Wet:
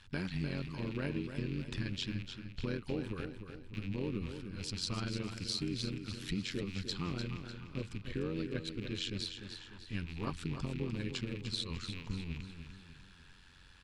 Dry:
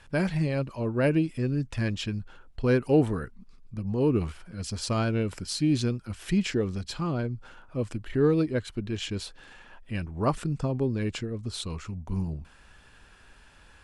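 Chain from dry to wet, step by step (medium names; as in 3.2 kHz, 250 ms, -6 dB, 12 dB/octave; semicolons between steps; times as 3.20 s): rattle on loud lows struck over -38 dBFS, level -33 dBFS; fifteen-band graphic EQ 630 Hz -11 dB, 4 kHz +8 dB, 10 kHz -4 dB; compression, threshold -28 dBFS, peak gain reduction 10 dB; AM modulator 91 Hz, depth 70%; feedback delay 299 ms, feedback 44%, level -8.5 dB; trim -2.5 dB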